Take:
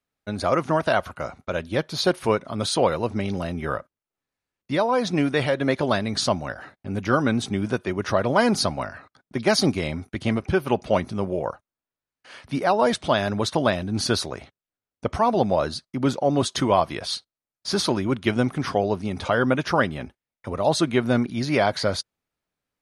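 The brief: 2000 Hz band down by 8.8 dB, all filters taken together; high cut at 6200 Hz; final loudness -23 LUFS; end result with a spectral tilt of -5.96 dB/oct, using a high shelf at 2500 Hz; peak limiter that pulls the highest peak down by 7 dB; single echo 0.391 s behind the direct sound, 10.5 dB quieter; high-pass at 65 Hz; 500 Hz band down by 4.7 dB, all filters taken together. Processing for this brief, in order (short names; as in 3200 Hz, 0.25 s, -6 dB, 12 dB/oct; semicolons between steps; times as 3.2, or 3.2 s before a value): HPF 65 Hz; LPF 6200 Hz; bell 500 Hz -5 dB; bell 2000 Hz -8.5 dB; high shelf 2500 Hz -8.5 dB; limiter -16.5 dBFS; echo 0.391 s -10.5 dB; gain +6 dB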